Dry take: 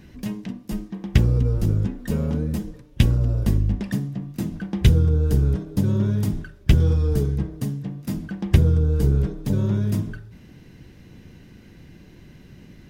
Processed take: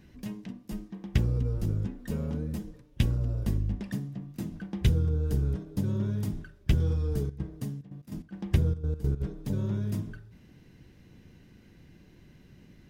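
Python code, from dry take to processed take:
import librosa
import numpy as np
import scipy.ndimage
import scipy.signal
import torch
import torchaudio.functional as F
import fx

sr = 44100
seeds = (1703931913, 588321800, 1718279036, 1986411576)

y = fx.step_gate(x, sr, bpm=146, pattern='xxxx.x.x.', floor_db=-12.0, edge_ms=4.5, at=(7.25, 9.2), fade=0.02)
y = y * librosa.db_to_amplitude(-8.5)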